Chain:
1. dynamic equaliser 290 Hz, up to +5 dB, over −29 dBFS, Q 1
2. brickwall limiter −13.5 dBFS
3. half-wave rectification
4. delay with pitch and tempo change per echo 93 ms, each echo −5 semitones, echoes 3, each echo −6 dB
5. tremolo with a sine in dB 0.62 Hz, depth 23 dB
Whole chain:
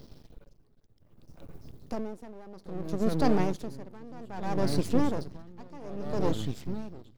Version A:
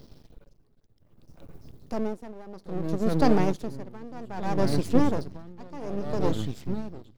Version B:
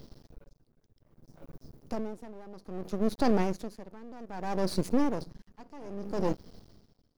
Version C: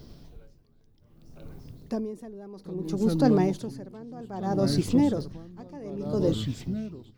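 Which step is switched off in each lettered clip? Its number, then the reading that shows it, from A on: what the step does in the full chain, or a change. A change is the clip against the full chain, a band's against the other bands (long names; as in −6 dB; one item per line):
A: 2, average gain reduction 1.5 dB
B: 4, 125 Hz band −4.0 dB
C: 3, distortion level −1 dB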